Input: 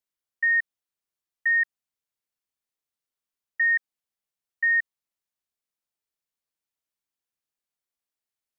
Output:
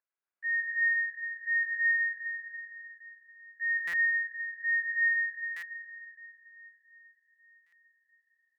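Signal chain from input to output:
adaptive Wiener filter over 25 samples
brickwall limiter −29.5 dBFS, peak gain reduction 11 dB
noise gate −35 dBFS, range −11 dB
dense smooth reverb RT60 4.1 s, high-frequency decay 0.8×, DRR −6 dB
upward compression, threshold −57 dBFS
resonant band-pass 1,700 Hz, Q 16
loudspeakers that aren't time-aligned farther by 37 metres −5 dB, 81 metres −9 dB, 96 metres −3 dB
buffer that repeats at 0:03.87/0:05.56/0:07.66, samples 256, times 10
level +7 dB

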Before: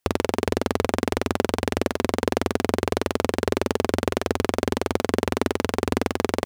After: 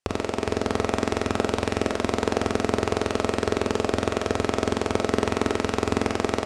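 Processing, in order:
on a send at −4 dB: convolution reverb RT60 0.35 s, pre-delay 10 ms
on the sum: automatic gain control
low-pass filter 9,300 Hz 24 dB per octave
level −4.5 dB

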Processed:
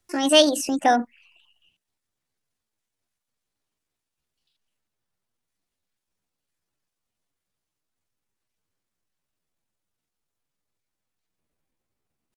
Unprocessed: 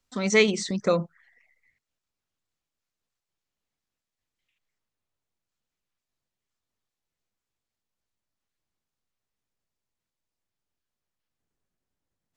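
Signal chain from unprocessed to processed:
pitch shifter +6 semitones
level +4 dB

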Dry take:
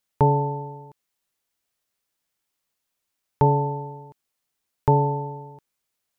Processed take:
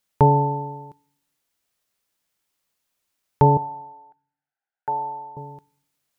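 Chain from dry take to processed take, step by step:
0:03.57–0:05.37: pair of resonant band-passes 1,100 Hz, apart 0.91 octaves
on a send: convolution reverb RT60 0.60 s, pre-delay 3 ms, DRR 23 dB
on the sum: level +3 dB

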